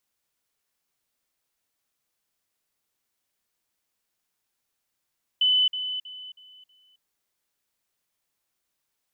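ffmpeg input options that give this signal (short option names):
-f lavfi -i "aevalsrc='pow(10,(-17.5-10*floor(t/0.32))/20)*sin(2*PI*3010*t)*clip(min(mod(t,0.32),0.27-mod(t,0.32))/0.005,0,1)':d=1.6:s=44100"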